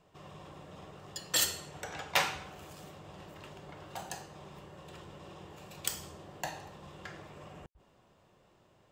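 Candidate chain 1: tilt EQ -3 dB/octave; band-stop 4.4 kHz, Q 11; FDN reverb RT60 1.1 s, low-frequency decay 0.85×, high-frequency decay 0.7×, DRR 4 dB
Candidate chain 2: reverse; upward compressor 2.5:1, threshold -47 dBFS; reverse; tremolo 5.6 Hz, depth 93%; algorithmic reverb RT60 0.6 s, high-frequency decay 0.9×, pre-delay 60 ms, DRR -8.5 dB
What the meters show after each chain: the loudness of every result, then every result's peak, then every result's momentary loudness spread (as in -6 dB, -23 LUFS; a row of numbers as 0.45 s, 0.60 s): -39.5 LUFS, -29.5 LUFS; -13.5 dBFS, -9.0 dBFS; 11 LU, 21 LU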